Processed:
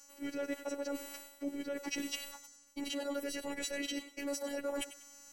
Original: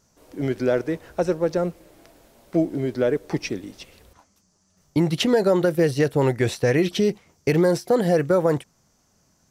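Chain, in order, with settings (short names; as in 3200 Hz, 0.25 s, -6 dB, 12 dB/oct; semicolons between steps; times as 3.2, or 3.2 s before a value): frequency quantiser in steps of 2 st; limiter -16 dBFS, peak gain reduction 11 dB; time stretch by phase-locked vocoder 0.56×; reverse; compressor 10:1, threshold -37 dBFS, peak gain reduction 17 dB; reverse; robotiser 283 Hz; bell 91 Hz -14.5 dB 0.94 oct; thinning echo 97 ms, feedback 33%, high-pass 210 Hz, level -14 dB; gain +4.5 dB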